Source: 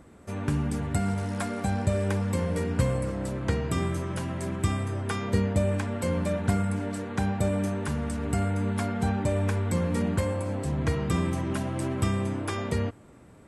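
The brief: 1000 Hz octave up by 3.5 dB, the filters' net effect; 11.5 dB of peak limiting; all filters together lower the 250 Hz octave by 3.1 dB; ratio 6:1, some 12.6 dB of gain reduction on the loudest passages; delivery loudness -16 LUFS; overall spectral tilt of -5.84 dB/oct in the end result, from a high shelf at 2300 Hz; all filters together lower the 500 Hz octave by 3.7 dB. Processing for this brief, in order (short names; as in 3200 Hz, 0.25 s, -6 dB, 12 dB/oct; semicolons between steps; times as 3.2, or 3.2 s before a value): bell 250 Hz -3.5 dB; bell 500 Hz -5.5 dB; bell 1000 Hz +8 dB; high shelf 2300 Hz -7.5 dB; compressor 6:1, threshold -35 dBFS; gain +26 dB; limiter -7.5 dBFS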